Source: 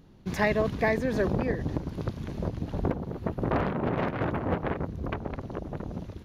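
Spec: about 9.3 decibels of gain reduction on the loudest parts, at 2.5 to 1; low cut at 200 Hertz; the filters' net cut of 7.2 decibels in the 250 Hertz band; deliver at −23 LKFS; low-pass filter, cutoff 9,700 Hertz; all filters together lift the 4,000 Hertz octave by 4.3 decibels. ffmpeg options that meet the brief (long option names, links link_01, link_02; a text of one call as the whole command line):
ffmpeg -i in.wav -af "highpass=200,lowpass=9700,equalizer=frequency=250:width_type=o:gain=-7,equalizer=frequency=4000:width_type=o:gain=5.5,acompressor=threshold=-35dB:ratio=2.5,volume=16dB" out.wav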